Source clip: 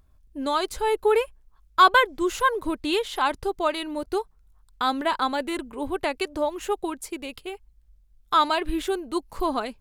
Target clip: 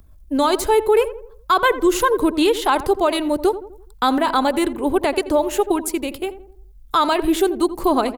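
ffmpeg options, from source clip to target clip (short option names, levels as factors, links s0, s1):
-filter_complex "[0:a]highshelf=f=10000:g=11.5,acrossover=split=860[s0][s1];[s0]acontrast=21[s2];[s2][s1]amix=inputs=2:normalize=0,alimiter=limit=0.211:level=0:latency=1:release=70,acrossover=split=130|3000[s3][s4][s5];[s3]acompressor=threshold=0.0112:ratio=2[s6];[s6][s4][s5]amix=inputs=3:normalize=0,atempo=1.2,asplit=2[s7][s8];[s8]adelay=84,lowpass=f=1200:p=1,volume=0.237,asplit=2[s9][s10];[s10]adelay=84,lowpass=f=1200:p=1,volume=0.48,asplit=2[s11][s12];[s12]adelay=84,lowpass=f=1200:p=1,volume=0.48,asplit=2[s13][s14];[s14]adelay=84,lowpass=f=1200:p=1,volume=0.48,asplit=2[s15][s16];[s16]adelay=84,lowpass=f=1200:p=1,volume=0.48[s17];[s9][s11][s13][s15][s17]amix=inputs=5:normalize=0[s18];[s7][s18]amix=inputs=2:normalize=0,volume=2"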